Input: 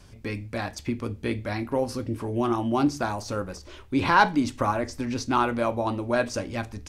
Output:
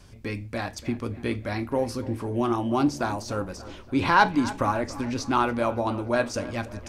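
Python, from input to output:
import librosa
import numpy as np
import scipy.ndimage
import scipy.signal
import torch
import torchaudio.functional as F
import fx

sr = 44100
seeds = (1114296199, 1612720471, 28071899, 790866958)

y = fx.echo_wet_lowpass(x, sr, ms=288, feedback_pct=53, hz=2900.0, wet_db=-16.5)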